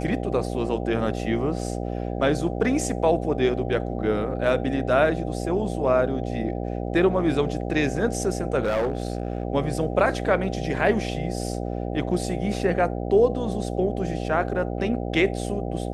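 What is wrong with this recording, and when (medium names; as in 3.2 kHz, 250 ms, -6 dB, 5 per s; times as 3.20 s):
buzz 60 Hz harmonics 13 -29 dBFS
8.62–9.43 s: clipped -19.5 dBFS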